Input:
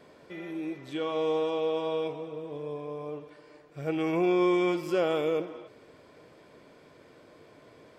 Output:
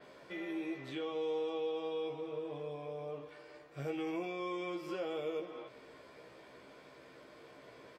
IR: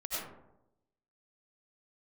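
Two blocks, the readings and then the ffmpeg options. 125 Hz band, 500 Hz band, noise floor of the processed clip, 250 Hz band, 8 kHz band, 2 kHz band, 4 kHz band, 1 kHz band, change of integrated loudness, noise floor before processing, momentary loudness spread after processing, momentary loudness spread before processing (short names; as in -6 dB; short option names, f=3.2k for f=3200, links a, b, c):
-9.0 dB, -9.5 dB, -57 dBFS, -10.5 dB, n/a, -8.0 dB, -7.5 dB, -9.5 dB, -10.0 dB, -56 dBFS, 19 LU, 16 LU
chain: -filter_complex "[0:a]lowshelf=f=490:g=-7,acrossover=split=540|3600[a][b][c];[a]acompressor=threshold=-41dB:ratio=4[d];[b]acompressor=threshold=-49dB:ratio=4[e];[c]acompressor=threshold=-58dB:ratio=4[f];[d][e][f]amix=inputs=3:normalize=0,asplit=2[g][h];[h]adelay=15,volume=-3dB[i];[g][i]amix=inputs=2:normalize=0,asplit=2[j][k];[1:a]atrim=start_sample=2205,atrim=end_sample=3528,lowpass=5.8k[l];[k][l]afir=irnorm=-1:irlink=0,volume=-4dB[m];[j][m]amix=inputs=2:normalize=0,adynamicequalizer=threshold=0.001:dfrequency=5700:dqfactor=0.7:tfrequency=5700:tqfactor=0.7:attack=5:release=100:ratio=0.375:range=2.5:mode=cutabove:tftype=highshelf,volume=-2.5dB"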